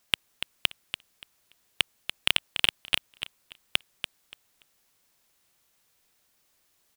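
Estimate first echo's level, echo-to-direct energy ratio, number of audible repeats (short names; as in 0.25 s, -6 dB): -9.0 dB, -9.0 dB, 2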